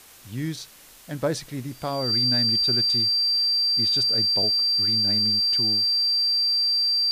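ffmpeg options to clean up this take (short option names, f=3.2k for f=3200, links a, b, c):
-af "adeclick=t=4,bandreject=f=4.7k:w=30,afwtdn=0.004"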